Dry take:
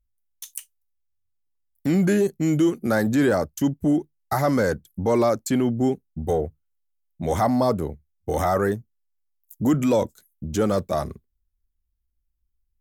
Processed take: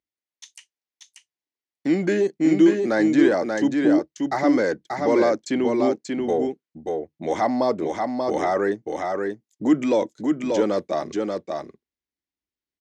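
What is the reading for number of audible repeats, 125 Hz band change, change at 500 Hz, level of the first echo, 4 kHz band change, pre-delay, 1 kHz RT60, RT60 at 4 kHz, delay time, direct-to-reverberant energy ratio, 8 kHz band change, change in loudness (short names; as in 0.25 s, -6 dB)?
1, -9.5 dB, +2.0 dB, -4.0 dB, +1.5 dB, none, none, none, 0.585 s, none, -5.0 dB, +1.0 dB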